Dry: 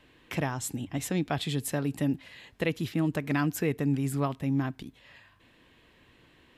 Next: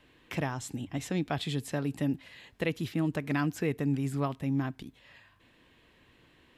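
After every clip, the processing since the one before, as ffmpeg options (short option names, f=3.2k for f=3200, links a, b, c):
-filter_complex "[0:a]acrossover=split=7100[a][b];[b]acompressor=threshold=-48dB:ratio=4:attack=1:release=60[c];[a][c]amix=inputs=2:normalize=0,volume=-2dB"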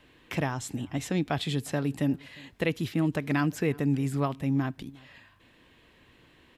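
-filter_complex "[0:a]asplit=2[a][b];[b]adelay=355.7,volume=-24dB,highshelf=f=4k:g=-8[c];[a][c]amix=inputs=2:normalize=0,volume=3dB"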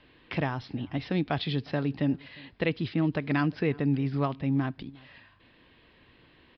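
-af "aresample=11025,aresample=44100"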